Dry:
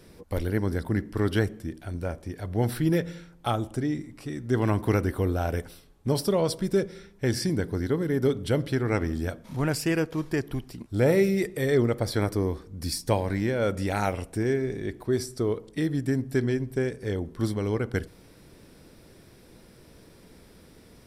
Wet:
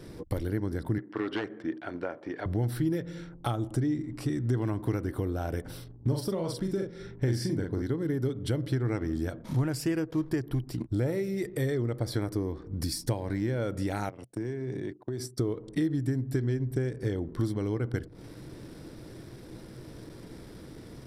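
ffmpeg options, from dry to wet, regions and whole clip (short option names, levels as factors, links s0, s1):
-filter_complex "[0:a]asettb=1/sr,asplit=3[s0][s1][s2];[s0]atrim=end=0.984[s3];[s1]atrim=start=0.98:end=2.46,asetpts=PTS-STARTPTS,afade=t=in:d=0.004:c=qsin,afade=t=out:st=1.476:d=0.004:c=qsin,tiltshelf=f=650:g=-4.5,aeval=exprs='0.0944*(abs(mod(val(0)/0.0944+3,4)-2)-1)':c=same,highpass=280,lowpass=2400[s4];[s2]atrim=start=2.456[s5];[s3][s4]acrossfade=d=0.004:c1=hsin:c2=qsin[s6];[s6][s5]acrossfade=d=0.004:c1=qsin:c2=hsin,asettb=1/sr,asplit=3[s7][s8][s9];[s7]atrim=end=5.614[s10];[s8]atrim=start=5.61:end=7.82,asetpts=PTS-STARTPTS,afade=t=in:d=0.004:c=qsin,afade=t=out:st=2.206:d=0.004:c=qsin,highshelf=f=4500:g=-2.5,aeval=exprs='val(0)+0.00141*(sin(2*PI*60*n/s)+sin(2*PI*2*60*n/s)/2+sin(2*PI*3*60*n/s)/3+sin(2*PI*4*60*n/s)/4+sin(2*PI*5*60*n/s)/5)':c=same,asplit=2[s11][s12];[s12]adelay=42,volume=0.668[s13];[s11][s13]amix=inputs=2:normalize=0,atrim=end_sample=97461[s14];[s9]atrim=start=7.816[s15];[s10][s14]acrossfade=d=0.004:c1=hsin:c2=qsin[s16];[s16][s15]acrossfade=d=0.004:c1=qsin:c2=hsin,asettb=1/sr,asplit=3[s17][s18][s19];[s17]atrim=end=14.094[s20];[s18]atrim=start=14.09:end=15.38,asetpts=PTS-STARTPTS,afade=t=in:d=0.004:c=qsin,afade=t=out:st=1.286:d=0.004:c=qsin,highpass=f=110:w=0.5412,highpass=f=110:w=1.3066,agate=range=0.178:threshold=0.0141:ratio=16:release=100:detection=peak,acompressor=threshold=0.0141:ratio=10:attack=3.2:release=140:knee=1:detection=peak[s21];[s19]atrim=start=15.376[s22];[s20][s21]acrossfade=d=0.004:c1=hsin:c2=qsin[s23];[s23][s22]acrossfade=d=0.004:c1=qsin:c2=hsin,acompressor=threshold=0.0178:ratio=6,anlmdn=0.000158,equalizer=f=125:t=o:w=0.33:g=9,equalizer=f=315:t=o:w=0.33:g=7,equalizer=f=2500:t=o:w=0.33:g=-4,volume=1.68"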